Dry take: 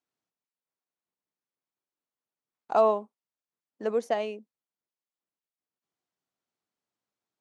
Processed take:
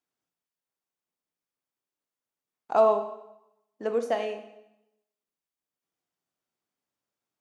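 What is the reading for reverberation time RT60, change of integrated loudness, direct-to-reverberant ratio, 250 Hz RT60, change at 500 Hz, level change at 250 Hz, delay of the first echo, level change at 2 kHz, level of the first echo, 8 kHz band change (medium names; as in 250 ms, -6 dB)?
0.85 s, +1.5 dB, 6.0 dB, 0.85 s, +1.5 dB, -0.5 dB, no echo, +1.0 dB, no echo, no reading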